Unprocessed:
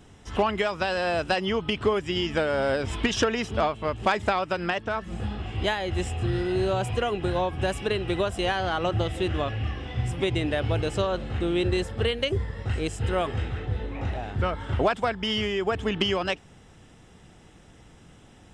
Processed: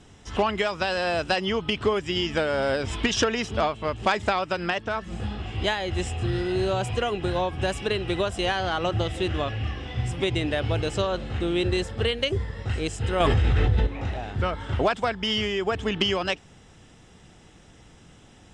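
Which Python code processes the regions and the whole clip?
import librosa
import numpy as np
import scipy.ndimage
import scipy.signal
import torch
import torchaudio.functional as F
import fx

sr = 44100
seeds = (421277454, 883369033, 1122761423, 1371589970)

y = fx.chain(x, sr, fx.low_shelf(hz=80.0, db=10.5),
    fx.env_flatten(amount_pct=100), at=(13.2, 13.87))
y = scipy.signal.sosfilt(scipy.signal.butter(2, 7000.0, 'lowpass', fs=sr, output='sos'), y)
y = fx.high_shelf(y, sr, hz=5000.0, db=9.0)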